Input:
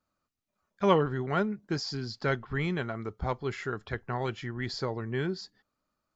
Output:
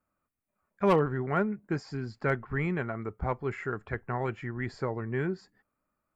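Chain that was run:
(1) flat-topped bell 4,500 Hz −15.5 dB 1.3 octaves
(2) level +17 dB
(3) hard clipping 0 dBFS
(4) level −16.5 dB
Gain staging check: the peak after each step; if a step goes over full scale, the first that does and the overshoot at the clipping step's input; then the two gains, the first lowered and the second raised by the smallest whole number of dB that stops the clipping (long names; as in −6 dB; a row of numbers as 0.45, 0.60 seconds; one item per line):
−11.5, +5.5, 0.0, −16.5 dBFS
step 2, 5.5 dB
step 2 +11 dB, step 4 −10.5 dB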